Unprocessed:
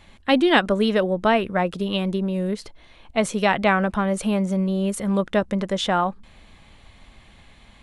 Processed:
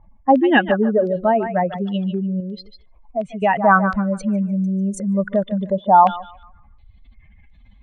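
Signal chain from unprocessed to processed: spectral contrast enhancement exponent 2.4; 2.40–3.42 s: compression 1.5:1, threshold -40 dBFS, peak gain reduction 8.5 dB; thinning echo 148 ms, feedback 30%, high-pass 850 Hz, level -8 dB; step-sequenced low-pass 2.8 Hz 950–6000 Hz; trim +2 dB

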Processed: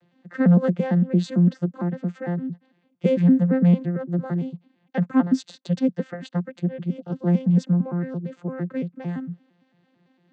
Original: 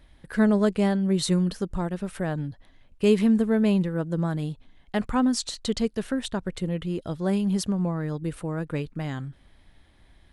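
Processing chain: vocoder on a broken chord bare fifth, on F3, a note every 113 ms; dynamic bell 1.7 kHz, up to +6 dB, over -57 dBFS, Q 2.7; trim +4 dB

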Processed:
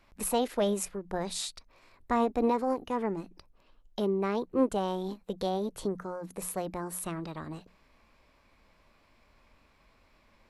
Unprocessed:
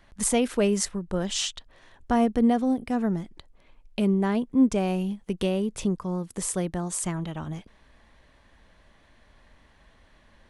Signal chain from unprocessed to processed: peaking EQ 630 Hz +4 dB 2.3 oct; hum notches 60/120/180 Hz; formant shift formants +4 st; trim -7.5 dB

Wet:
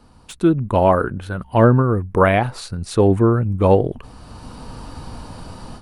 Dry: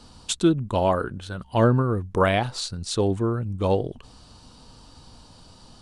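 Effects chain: de-esser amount 45%; high-order bell 5 kHz -10.5 dB; level rider gain up to 16.5 dB; trim -1 dB

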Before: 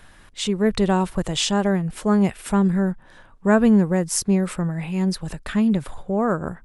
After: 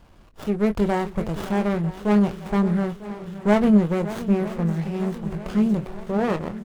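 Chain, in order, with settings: median filter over 9 samples; doubling 24 ms -9 dB; shuffle delay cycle 948 ms, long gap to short 1.5:1, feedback 55%, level -14.5 dB; sliding maximum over 17 samples; trim -1 dB

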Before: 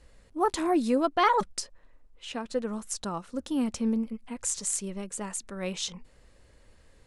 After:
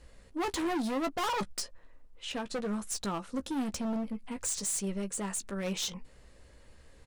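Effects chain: overload inside the chain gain 31 dB; doubling 15 ms -10 dB; trim +1 dB

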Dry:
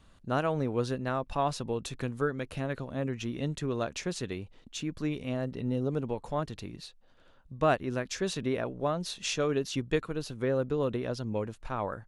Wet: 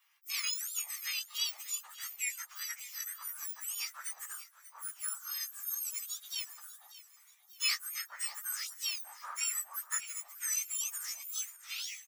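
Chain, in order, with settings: spectrum inverted on a logarithmic axis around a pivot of 1.8 kHz; inverse Chebyshev high-pass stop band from 390 Hz, stop band 60 dB; feedback delay 587 ms, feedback 44%, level -16 dB

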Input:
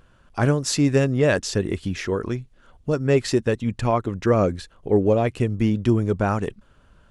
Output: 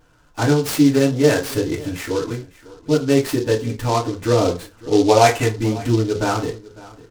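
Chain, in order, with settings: 5.08–5.49 s: high-order bell 1.5 kHz +11.5 dB 2.8 oct; feedback delay 552 ms, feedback 17%, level -20 dB; FDN reverb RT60 0.3 s, low-frequency decay 0.7×, high-frequency decay 0.65×, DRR -6.5 dB; delay time shaken by noise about 4.3 kHz, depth 0.044 ms; trim -5 dB

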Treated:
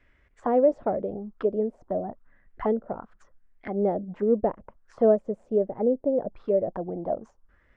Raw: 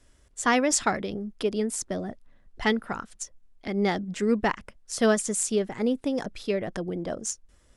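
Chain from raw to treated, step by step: touch-sensitive low-pass 580–2200 Hz down, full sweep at -25.5 dBFS; trim -3.5 dB

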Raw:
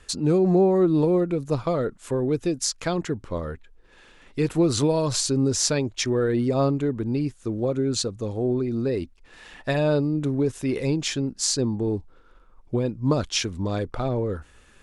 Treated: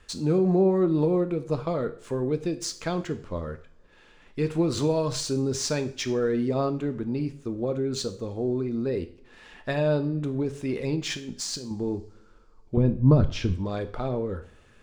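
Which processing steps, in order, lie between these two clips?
median filter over 3 samples; treble shelf 8.8 kHz -9.5 dB; 11.10–11.71 s: compressor with a negative ratio -31 dBFS, ratio -1; 12.77–13.54 s: RIAA curve playback; two-slope reverb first 0.47 s, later 2.7 s, from -27 dB, DRR 8 dB; trim -3.5 dB

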